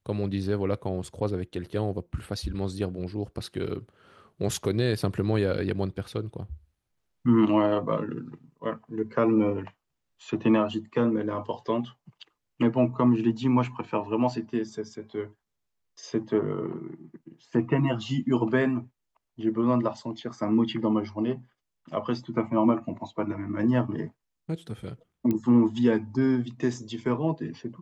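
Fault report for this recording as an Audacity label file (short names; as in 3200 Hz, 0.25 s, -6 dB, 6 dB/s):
25.310000	25.310000	pop -16 dBFS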